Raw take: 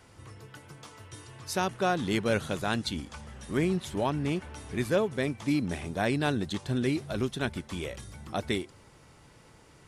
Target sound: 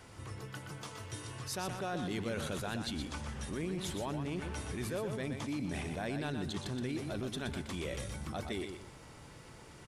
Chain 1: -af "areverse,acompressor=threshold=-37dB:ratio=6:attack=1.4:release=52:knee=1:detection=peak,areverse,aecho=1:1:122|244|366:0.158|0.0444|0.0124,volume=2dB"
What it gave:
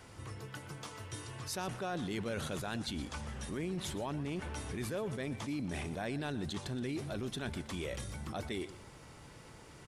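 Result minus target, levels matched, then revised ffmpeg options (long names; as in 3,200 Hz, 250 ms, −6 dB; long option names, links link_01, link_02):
echo-to-direct −9 dB
-af "areverse,acompressor=threshold=-37dB:ratio=6:attack=1.4:release=52:knee=1:detection=peak,areverse,aecho=1:1:122|244|366:0.447|0.125|0.035,volume=2dB"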